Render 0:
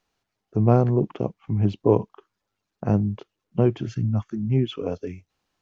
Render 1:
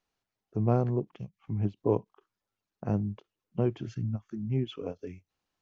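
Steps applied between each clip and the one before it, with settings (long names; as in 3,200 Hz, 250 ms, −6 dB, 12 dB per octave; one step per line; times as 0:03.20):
gain on a spectral selection 0:01.15–0:01.39, 200–1,600 Hz −18 dB
every ending faded ahead of time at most 470 dB per second
level −8 dB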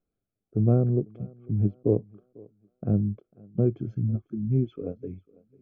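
moving average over 47 samples
feedback echo with a high-pass in the loop 497 ms, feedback 38%, high-pass 190 Hz, level −23 dB
level +6 dB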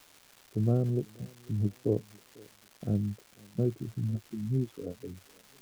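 surface crackle 570 per second −38 dBFS
level −5.5 dB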